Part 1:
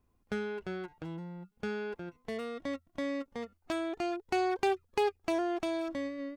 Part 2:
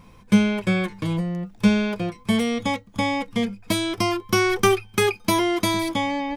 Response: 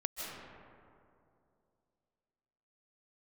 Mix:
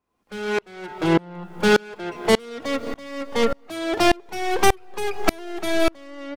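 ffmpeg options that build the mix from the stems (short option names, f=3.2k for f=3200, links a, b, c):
-filter_complex "[0:a]asplit=2[a][b];[b]highpass=f=720:p=1,volume=37dB,asoftclip=type=tanh:threshold=-17.5dB[c];[a][c]amix=inputs=2:normalize=0,lowpass=f=1k:p=1,volume=-6dB,volume=0.5dB,asplit=2[d][e];[e]volume=-13dB[f];[1:a]adelay=3.4,volume=-14.5dB[g];[2:a]atrim=start_sample=2205[h];[f][h]afir=irnorm=-1:irlink=0[i];[d][g][i]amix=inputs=3:normalize=0,dynaudnorm=f=220:g=7:m=11.5dB,highshelf=f=2.4k:g=10,aeval=exprs='val(0)*pow(10,-31*if(lt(mod(-1.7*n/s,1),2*abs(-1.7)/1000),1-mod(-1.7*n/s,1)/(2*abs(-1.7)/1000),(mod(-1.7*n/s,1)-2*abs(-1.7)/1000)/(1-2*abs(-1.7)/1000))/20)':c=same"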